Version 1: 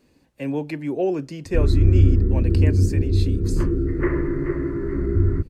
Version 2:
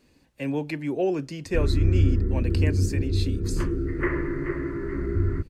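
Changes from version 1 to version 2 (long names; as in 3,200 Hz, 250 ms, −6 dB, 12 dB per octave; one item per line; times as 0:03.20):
speech: add spectral tilt −1.5 dB per octave
master: add tilt shelving filter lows −5.5 dB, about 1,200 Hz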